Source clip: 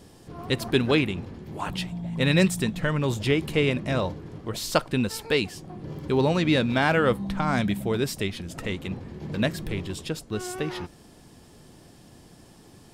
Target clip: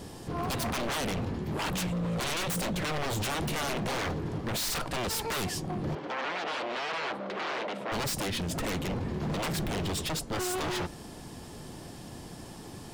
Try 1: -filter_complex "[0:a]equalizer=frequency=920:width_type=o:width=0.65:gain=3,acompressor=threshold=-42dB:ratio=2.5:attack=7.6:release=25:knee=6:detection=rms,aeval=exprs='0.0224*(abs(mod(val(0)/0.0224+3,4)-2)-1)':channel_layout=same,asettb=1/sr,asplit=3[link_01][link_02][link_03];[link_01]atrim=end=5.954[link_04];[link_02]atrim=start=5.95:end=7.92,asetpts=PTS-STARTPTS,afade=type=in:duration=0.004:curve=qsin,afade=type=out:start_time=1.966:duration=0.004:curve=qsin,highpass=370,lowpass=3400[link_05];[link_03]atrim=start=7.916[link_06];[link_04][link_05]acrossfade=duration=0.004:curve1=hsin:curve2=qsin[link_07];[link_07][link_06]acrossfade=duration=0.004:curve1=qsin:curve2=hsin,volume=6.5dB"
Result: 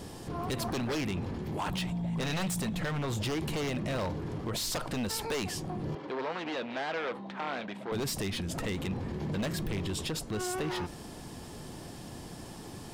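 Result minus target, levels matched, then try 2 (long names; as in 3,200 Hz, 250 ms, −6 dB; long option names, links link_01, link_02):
downward compressor: peak gain reduction +7 dB
-filter_complex "[0:a]equalizer=frequency=920:width_type=o:width=0.65:gain=3,acompressor=threshold=-30.5dB:ratio=2.5:attack=7.6:release=25:knee=6:detection=rms,aeval=exprs='0.0224*(abs(mod(val(0)/0.0224+3,4)-2)-1)':channel_layout=same,asettb=1/sr,asplit=3[link_01][link_02][link_03];[link_01]atrim=end=5.954[link_04];[link_02]atrim=start=5.95:end=7.92,asetpts=PTS-STARTPTS,afade=type=in:duration=0.004:curve=qsin,afade=type=out:start_time=1.966:duration=0.004:curve=qsin,highpass=370,lowpass=3400[link_05];[link_03]atrim=start=7.916[link_06];[link_04][link_05]acrossfade=duration=0.004:curve1=hsin:curve2=qsin[link_07];[link_07][link_06]acrossfade=duration=0.004:curve1=qsin:curve2=hsin,volume=6.5dB"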